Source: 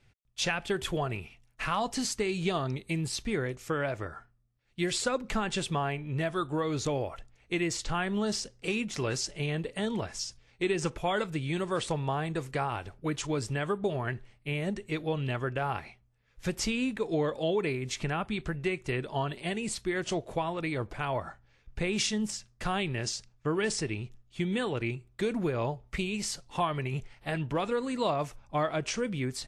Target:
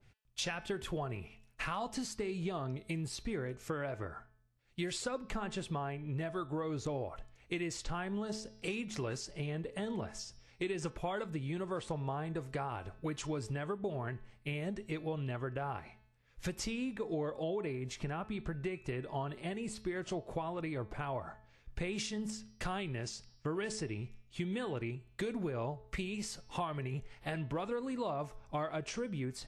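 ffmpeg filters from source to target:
ffmpeg -i in.wav -af "bandreject=frequency=216.7:width_type=h:width=4,bandreject=frequency=433.4:width_type=h:width=4,bandreject=frequency=650.1:width_type=h:width=4,bandreject=frequency=866.8:width_type=h:width=4,bandreject=frequency=1083.5:width_type=h:width=4,bandreject=frequency=1300.2:width_type=h:width=4,bandreject=frequency=1516.9:width_type=h:width=4,bandreject=frequency=1733.6:width_type=h:width=4,bandreject=frequency=1950.3:width_type=h:width=4,bandreject=frequency=2167:width_type=h:width=4,bandreject=frequency=2383.7:width_type=h:width=4,bandreject=frequency=2600.4:width_type=h:width=4,bandreject=frequency=2817.1:width_type=h:width=4,bandreject=frequency=3033.8:width_type=h:width=4,bandreject=frequency=3250.5:width_type=h:width=4,bandreject=frequency=3467.2:width_type=h:width=4,bandreject=frequency=3683.9:width_type=h:width=4,bandreject=frequency=3900.6:width_type=h:width=4,bandreject=frequency=4117.3:width_type=h:width=4,bandreject=frequency=4334:width_type=h:width=4,bandreject=frequency=4550.7:width_type=h:width=4,bandreject=frequency=4767.4:width_type=h:width=4,bandreject=frequency=4984.1:width_type=h:width=4,bandreject=frequency=5200.8:width_type=h:width=4,bandreject=frequency=5417.5:width_type=h:width=4,bandreject=frequency=5634.2:width_type=h:width=4,bandreject=frequency=5850.9:width_type=h:width=4,acompressor=threshold=-37dB:ratio=2.5,adynamicequalizer=threshold=0.00178:dfrequency=1700:dqfactor=0.7:tfrequency=1700:tqfactor=0.7:attack=5:release=100:ratio=0.375:range=4:mode=cutabove:tftype=highshelf" out.wav

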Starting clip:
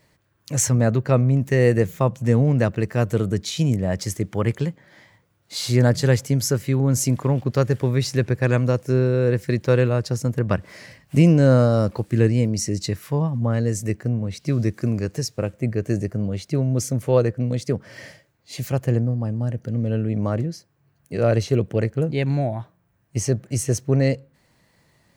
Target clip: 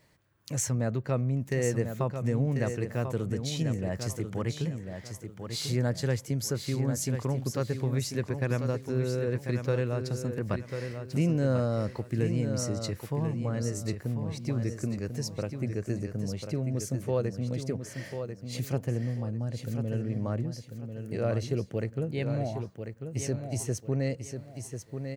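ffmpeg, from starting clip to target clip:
ffmpeg -i in.wav -af "acompressor=threshold=-33dB:ratio=1.5,aecho=1:1:1043|2086|3129|4172:0.422|0.127|0.038|0.0114,volume=-4dB" out.wav

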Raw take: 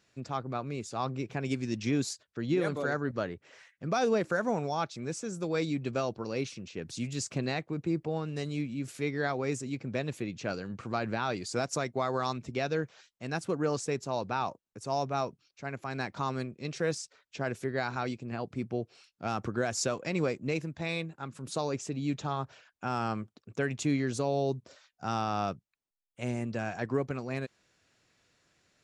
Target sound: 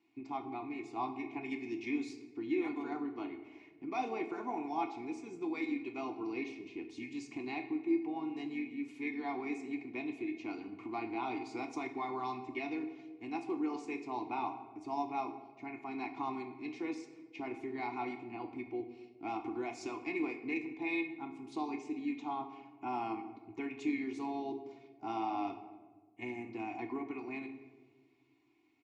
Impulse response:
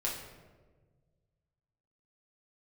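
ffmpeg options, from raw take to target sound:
-filter_complex "[0:a]asplit=3[link_01][link_02][link_03];[link_01]bandpass=frequency=300:width_type=q:width=8,volume=0dB[link_04];[link_02]bandpass=frequency=870:width_type=q:width=8,volume=-6dB[link_05];[link_03]bandpass=frequency=2240:width_type=q:width=8,volume=-9dB[link_06];[link_04][link_05][link_06]amix=inputs=3:normalize=0,acrossover=split=470|3000[link_07][link_08][link_09];[link_07]acompressor=threshold=-55dB:ratio=4[link_10];[link_10][link_08][link_09]amix=inputs=3:normalize=0,asplit=2[link_11][link_12];[link_12]asetrate=37084,aresample=44100,atempo=1.18921,volume=-15dB[link_13];[link_11][link_13]amix=inputs=2:normalize=0,aecho=1:1:2.8:0.65,asplit=2[link_14][link_15];[1:a]atrim=start_sample=2205,asetrate=43218,aresample=44100[link_16];[link_15][link_16]afir=irnorm=-1:irlink=0,volume=-4dB[link_17];[link_14][link_17]amix=inputs=2:normalize=0,volume=4.5dB"

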